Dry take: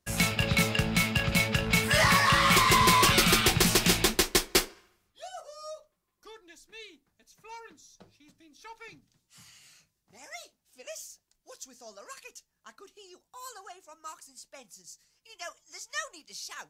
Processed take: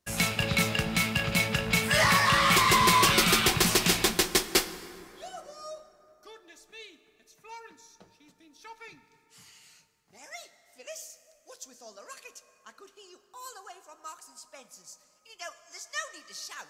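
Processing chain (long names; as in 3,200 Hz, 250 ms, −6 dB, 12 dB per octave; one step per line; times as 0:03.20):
low-shelf EQ 130 Hz −6 dB
dense smooth reverb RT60 3.3 s, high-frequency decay 0.5×, DRR 12 dB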